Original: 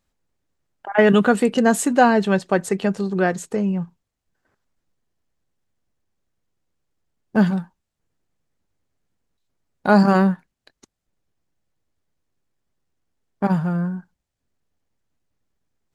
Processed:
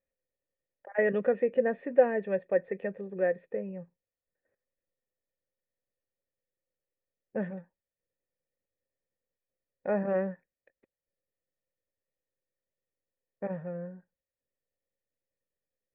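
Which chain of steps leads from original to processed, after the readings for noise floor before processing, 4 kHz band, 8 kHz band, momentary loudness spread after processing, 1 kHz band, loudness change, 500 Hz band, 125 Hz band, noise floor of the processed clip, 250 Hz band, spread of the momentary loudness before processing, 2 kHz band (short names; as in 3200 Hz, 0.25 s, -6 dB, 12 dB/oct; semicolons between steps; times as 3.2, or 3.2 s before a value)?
-81 dBFS, under -30 dB, n/a, 14 LU, -18.5 dB, -11.5 dB, -7.0 dB, -19.0 dB, under -85 dBFS, -18.5 dB, 13 LU, -14.0 dB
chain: vocal tract filter e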